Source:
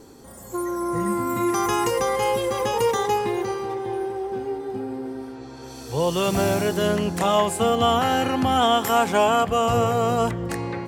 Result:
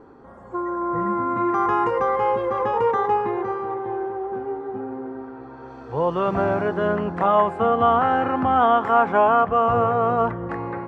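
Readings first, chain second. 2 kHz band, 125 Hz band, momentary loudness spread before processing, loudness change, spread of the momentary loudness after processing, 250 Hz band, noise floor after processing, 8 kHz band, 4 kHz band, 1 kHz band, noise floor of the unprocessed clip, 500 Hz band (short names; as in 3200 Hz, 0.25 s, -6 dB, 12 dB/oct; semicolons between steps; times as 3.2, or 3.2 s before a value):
0.0 dB, -3.0 dB, 11 LU, +1.0 dB, 14 LU, -1.5 dB, -41 dBFS, under -30 dB, -14.0 dB, +3.5 dB, -40 dBFS, +0.5 dB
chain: synth low-pass 1300 Hz, resonance Q 1.7; low shelf 220 Hz -4.5 dB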